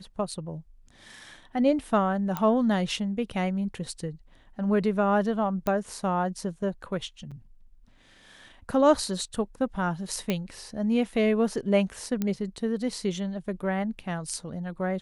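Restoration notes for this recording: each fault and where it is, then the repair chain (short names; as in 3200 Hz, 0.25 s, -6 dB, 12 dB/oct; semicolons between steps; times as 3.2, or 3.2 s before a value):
2.37 pop -14 dBFS
5.67 pop -15 dBFS
7.31–7.32 gap 6.1 ms
10.3 pop -13 dBFS
12.22 pop -15 dBFS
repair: de-click; interpolate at 7.31, 6.1 ms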